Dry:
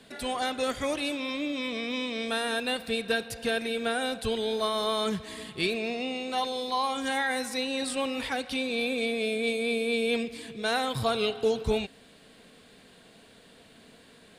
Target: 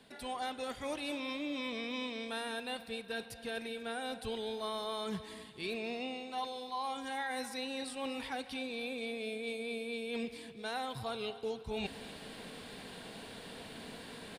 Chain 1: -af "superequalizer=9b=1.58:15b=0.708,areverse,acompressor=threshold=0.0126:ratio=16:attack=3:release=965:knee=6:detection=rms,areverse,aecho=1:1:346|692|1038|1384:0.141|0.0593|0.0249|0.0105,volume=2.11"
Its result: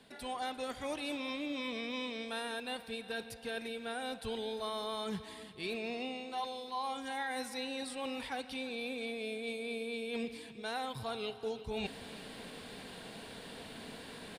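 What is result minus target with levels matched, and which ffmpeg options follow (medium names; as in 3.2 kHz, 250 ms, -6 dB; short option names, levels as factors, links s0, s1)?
echo 103 ms late
-af "superequalizer=9b=1.58:15b=0.708,areverse,acompressor=threshold=0.0126:ratio=16:attack=3:release=965:knee=6:detection=rms,areverse,aecho=1:1:243|486|729|972:0.141|0.0593|0.0249|0.0105,volume=2.11"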